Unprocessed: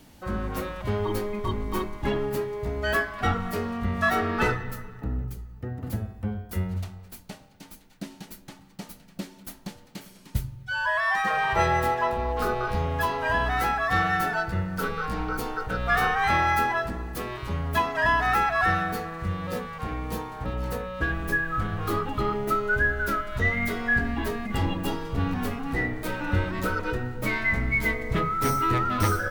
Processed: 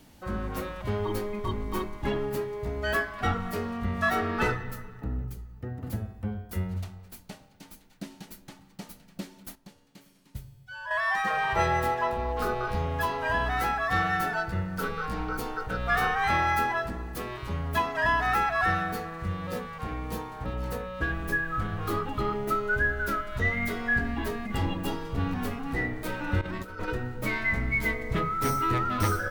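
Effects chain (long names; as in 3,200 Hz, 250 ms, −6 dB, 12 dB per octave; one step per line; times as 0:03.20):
0:09.55–0:10.91: tuned comb filter 140 Hz, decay 1.3 s, mix 70%
0:26.41–0:26.88: compressor whose output falls as the input rises −32 dBFS, ratio −0.5
level −2.5 dB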